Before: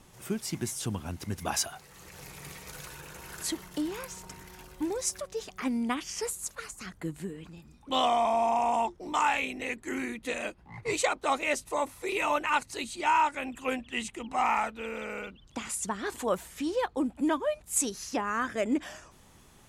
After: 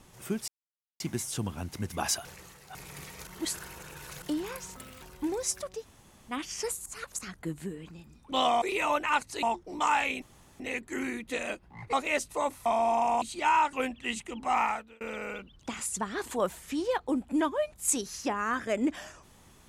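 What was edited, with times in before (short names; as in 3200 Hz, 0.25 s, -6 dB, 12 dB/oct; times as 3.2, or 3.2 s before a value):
0.48 insert silence 0.52 s
1.73–2.23 reverse
2.75–3.7 reverse
4.24–4.6 speed 140%
5.38–5.91 room tone, crossfade 0.10 s
6.44–6.77 reverse
8.2–8.76 swap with 12.02–12.83
9.55 insert room tone 0.38 s
10.88–11.29 cut
13.34–13.61 cut
14.49–14.89 fade out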